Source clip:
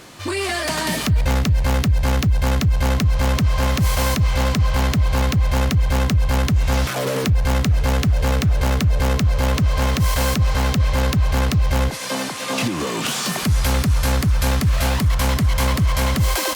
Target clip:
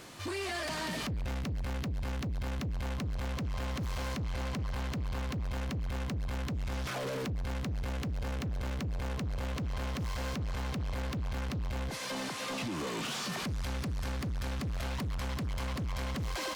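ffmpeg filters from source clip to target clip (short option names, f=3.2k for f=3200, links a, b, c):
-filter_complex "[0:a]acrossover=split=6500[a][b];[b]acompressor=threshold=-41dB:ratio=6[c];[a][c]amix=inputs=2:normalize=0,alimiter=limit=-15.5dB:level=0:latency=1,asoftclip=type=tanh:threshold=-24.5dB,volume=-7.5dB"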